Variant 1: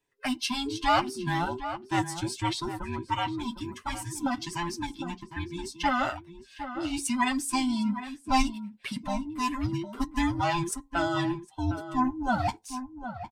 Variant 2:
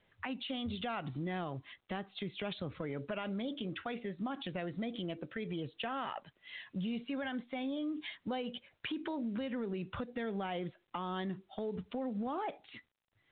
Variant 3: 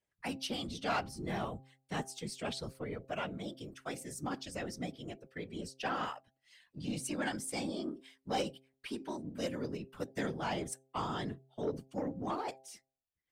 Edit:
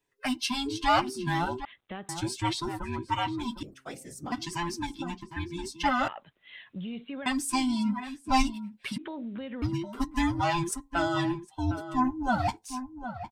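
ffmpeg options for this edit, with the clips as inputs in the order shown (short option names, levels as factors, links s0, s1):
-filter_complex "[1:a]asplit=3[s0][s1][s2];[0:a]asplit=5[s3][s4][s5][s6][s7];[s3]atrim=end=1.652[s8];[s0]atrim=start=1.648:end=2.092[s9];[s4]atrim=start=2.088:end=3.632[s10];[2:a]atrim=start=3.628:end=4.322[s11];[s5]atrim=start=4.318:end=6.082[s12];[s1]atrim=start=6.078:end=7.262[s13];[s6]atrim=start=7.258:end=8.982[s14];[s2]atrim=start=8.978:end=9.622[s15];[s7]atrim=start=9.618[s16];[s8][s9]acrossfade=d=0.004:c1=hsin:c2=hsin[s17];[s17][s10]acrossfade=d=0.004:c1=hsin:c2=hsin[s18];[s18][s11]acrossfade=d=0.004:c1=hsin:c2=hsin[s19];[s19][s12]acrossfade=d=0.004:c1=hsin:c2=hsin[s20];[s20][s13]acrossfade=d=0.004:c1=hsin:c2=hsin[s21];[s21][s14]acrossfade=d=0.004:c1=hsin:c2=hsin[s22];[s22][s15]acrossfade=d=0.004:c1=hsin:c2=hsin[s23];[s23][s16]acrossfade=d=0.004:c1=hsin:c2=hsin"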